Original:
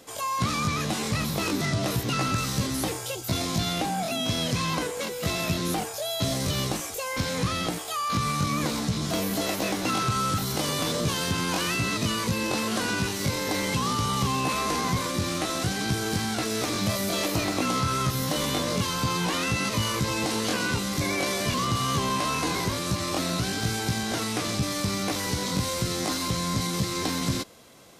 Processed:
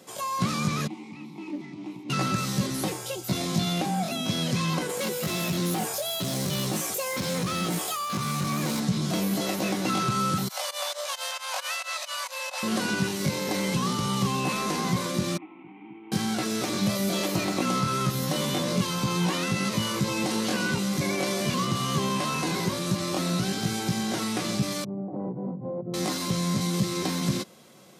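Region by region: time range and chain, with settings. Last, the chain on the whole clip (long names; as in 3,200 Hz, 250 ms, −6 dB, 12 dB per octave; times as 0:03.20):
0:00.87–0:02.10: formant filter u + high-shelf EQ 5,200 Hz +9 dB + highs frequency-modulated by the lows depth 0.15 ms
0:04.89–0:08.80: high-shelf EQ 11,000 Hz +8 dB + hard clipping −26 dBFS + envelope flattener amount 70%
0:10.48–0:12.63: Butterworth high-pass 540 Hz 96 dB per octave + fake sidechain pumping 134 BPM, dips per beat 2, −22 dB, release 103 ms
0:15.37–0:16.12: variable-slope delta modulation 16 kbit/s + formant filter u + low-shelf EQ 370 Hz −8.5 dB
0:24.84–0:25.94: elliptic band-pass filter 120–770 Hz, stop band 80 dB + compressor whose output falls as the input rises −35 dBFS
whole clip: Chebyshev high-pass filter 160 Hz, order 2; low-shelf EQ 250 Hz +5.5 dB; comb filter 5.4 ms, depth 37%; level −1.5 dB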